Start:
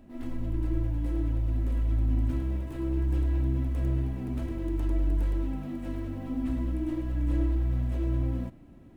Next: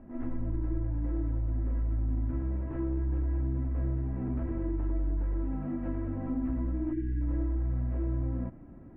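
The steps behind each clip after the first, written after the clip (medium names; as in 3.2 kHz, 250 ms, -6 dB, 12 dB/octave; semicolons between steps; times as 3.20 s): time-frequency box 6.93–7.22 s, 480–1400 Hz -28 dB; low-pass 1.8 kHz 24 dB/octave; compression 3:1, threshold -31 dBFS, peak gain reduction 7.5 dB; trim +2.5 dB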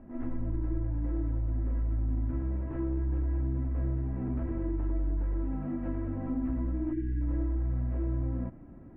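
no audible change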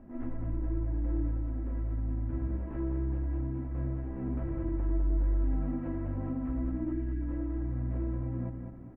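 feedback delay 204 ms, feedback 36%, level -6 dB; trim -1.5 dB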